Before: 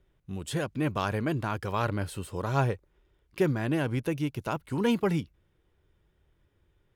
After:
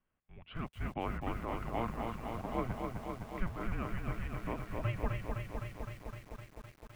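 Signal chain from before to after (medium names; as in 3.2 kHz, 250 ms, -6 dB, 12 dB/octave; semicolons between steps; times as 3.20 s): mistuned SSB -360 Hz 310–3500 Hz; distance through air 210 m; bit-crushed delay 256 ms, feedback 80%, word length 9-bit, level -4 dB; trim -6 dB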